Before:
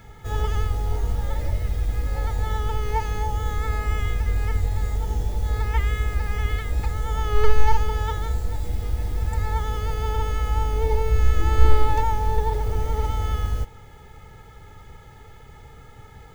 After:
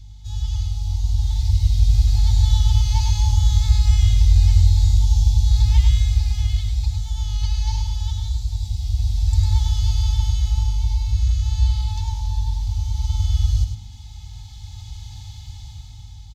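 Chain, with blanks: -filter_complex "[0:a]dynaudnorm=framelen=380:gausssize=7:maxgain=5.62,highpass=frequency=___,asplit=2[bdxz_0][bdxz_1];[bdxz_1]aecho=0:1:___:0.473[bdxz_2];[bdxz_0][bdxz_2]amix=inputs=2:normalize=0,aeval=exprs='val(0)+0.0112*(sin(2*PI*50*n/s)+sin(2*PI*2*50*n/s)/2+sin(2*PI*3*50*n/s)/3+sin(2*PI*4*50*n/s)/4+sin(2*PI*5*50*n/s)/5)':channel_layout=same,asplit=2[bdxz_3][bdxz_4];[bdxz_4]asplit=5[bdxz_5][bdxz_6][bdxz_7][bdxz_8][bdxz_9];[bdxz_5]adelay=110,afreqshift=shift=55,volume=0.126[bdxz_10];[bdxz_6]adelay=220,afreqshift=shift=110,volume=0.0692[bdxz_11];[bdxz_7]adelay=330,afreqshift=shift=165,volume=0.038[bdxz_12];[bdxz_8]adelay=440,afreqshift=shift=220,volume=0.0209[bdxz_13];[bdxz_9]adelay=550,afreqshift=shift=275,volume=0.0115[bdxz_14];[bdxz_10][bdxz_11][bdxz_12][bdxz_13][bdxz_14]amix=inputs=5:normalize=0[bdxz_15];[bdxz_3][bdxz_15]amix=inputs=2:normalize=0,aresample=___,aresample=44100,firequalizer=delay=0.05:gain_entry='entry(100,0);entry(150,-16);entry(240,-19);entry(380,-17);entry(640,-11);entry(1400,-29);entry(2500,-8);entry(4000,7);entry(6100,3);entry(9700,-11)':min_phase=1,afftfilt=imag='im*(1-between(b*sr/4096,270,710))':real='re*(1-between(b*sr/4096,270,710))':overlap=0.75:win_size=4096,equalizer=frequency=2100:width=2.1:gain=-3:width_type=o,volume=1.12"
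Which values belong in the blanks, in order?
56, 102, 32000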